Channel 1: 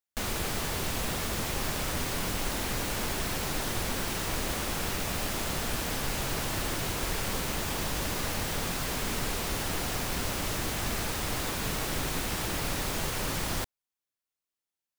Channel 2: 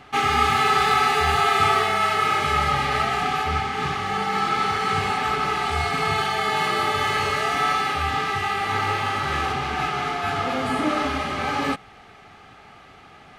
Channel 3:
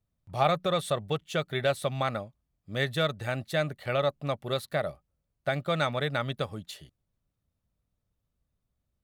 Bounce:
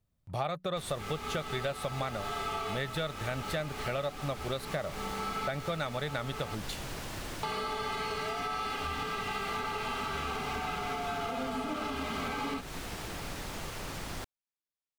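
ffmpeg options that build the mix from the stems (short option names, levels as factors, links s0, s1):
-filter_complex "[0:a]adelay=600,volume=0.422[s0];[1:a]bandreject=f=1800:w=5,aecho=1:1:4.4:0.7,adelay=850,volume=0.596,asplit=3[s1][s2][s3];[s1]atrim=end=6.55,asetpts=PTS-STARTPTS,afade=t=out:st=6.546:d=0.004:c=hsin[s4];[s2]atrim=start=6.55:end=7.43,asetpts=PTS-STARTPTS,volume=0[s5];[s3]atrim=start=7.43,asetpts=PTS-STARTPTS,afade=t=in:d=0.004:c=hsin[s6];[s4][s5][s6]concat=n=3:v=0:a=1[s7];[2:a]volume=1.33,asplit=2[s8][s9];[s9]apad=whole_len=628171[s10];[s7][s10]sidechaincompress=threshold=0.0158:ratio=3:attack=16:release=956[s11];[s0][s11]amix=inputs=2:normalize=0,highshelf=f=10000:g=-8.5,alimiter=limit=0.0944:level=0:latency=1:release=232,volume=1[s12];[s8][s12]amix=inputs=2:normalize=0,acompressor=threshold=0.0251:ratio=4"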